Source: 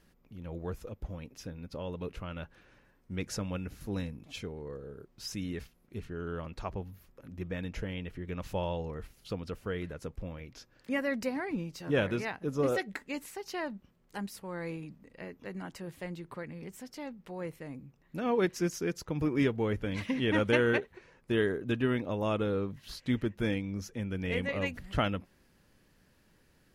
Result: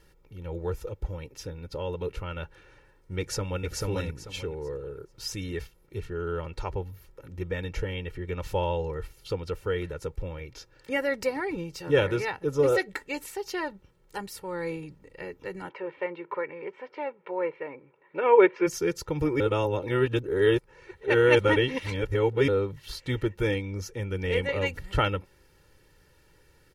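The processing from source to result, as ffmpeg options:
ffmpeg -i in.wav -filter_complex "[0:a]asplit=2[link_01][link_02];[link_02]afade=type=in:start_time=3.19:duration=0.01,afade=type=out:start_time=3.66:duration=0.01,aecho=0:1:440|880|1320|1760:0.841395|0.210349|0.0525872|0.0131468[link_03];[link_01][link_03]amix=inputs=2:normalize=0,asplit=3[link_04][link_05][link_06];[link_04]afade=type=out:start_time=15.68:duration=0.02[link_07];[link_05]highpass=320,equalizer=frequency=400:width_type=q:width=4:gain=6,equalizer=frequency=580:width_type=q:width=4:gain=6,equalizer=frequency=1000:width_type=q:width=4:gain=9,equalizer=frequency=1500:width_type=q:width=4:gain=3,equalizer=frequency=2300:width_type=q:width=4:gain=7,lowpass=frequency=2900:width=0.5412,lowpass=frequency=2900:width=1.3066,afade=type=in:start_time=15.68:duration=0.02,afade=type=out:start_time=18.66:duration=0.02[link_08];[link_06]afade=type=in:start_time=18.66:duration=0.02[link_09];[link_07][link_08][link_09]amix=inputs=3:normalize=0,asplit=3[link_10][link_11][link_12];[link_10]atrim=end=19.402[link_13];[link_11]atrim=start=19.398:end=22.482,asetpts=PTS-STARTPTS,areverse[link_14];[link_12]atrim=start=22.478[link_15];[link_13][link_14]acrossfade=duration=0.004:curve1=hsin:curve2=hsin[link_16];[link_16][link_15]acrossfade=duration=0.004:curve1=hsin:curve2=hsin,aecho=1:1:2.2:0.76,volume=3.5dB" out.wav

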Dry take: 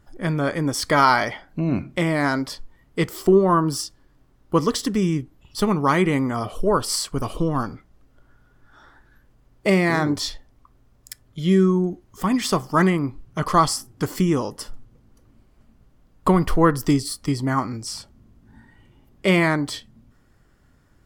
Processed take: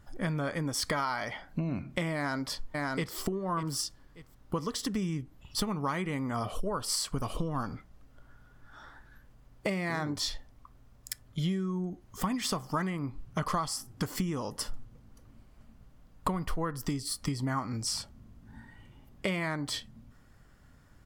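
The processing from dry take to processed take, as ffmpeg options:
ffmpeg -i in.wav -filter_complex "[0:a]asplit=2[link_01][link_02];[link_02]afade=type=in:start_time=2.15:duration=0.01,afade=type=out:start_time=3.16:duration=0.01,aecho=0:1:590|1180:0.354813|0.0354813[link_03];[link_01][link_03]amix=inputs=2:normalize=0,acompressor=threshold=-27dB:ratio=12,equalizer=frequency=360:width_type=o:width=0.64:gain=-5.5" out.wav

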